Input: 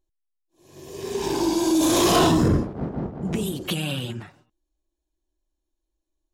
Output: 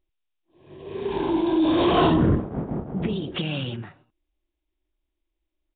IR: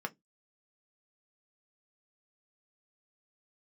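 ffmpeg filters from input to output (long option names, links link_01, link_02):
-af "atempo=1.1" -ar 8000 -c:a nellymoser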